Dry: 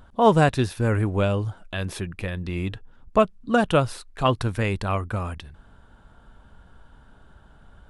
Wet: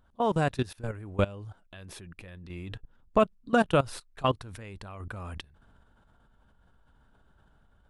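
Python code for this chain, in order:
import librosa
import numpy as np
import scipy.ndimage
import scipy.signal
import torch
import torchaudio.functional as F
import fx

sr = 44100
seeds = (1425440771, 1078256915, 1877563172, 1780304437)

y = fx.level_steps(x, sr, step_db=20)
y = fx.tremolo_random(y, sr, seeds[0], hz=1.2, depth_pct=55)
y = y * librosa.db_to_amplitude(1.5)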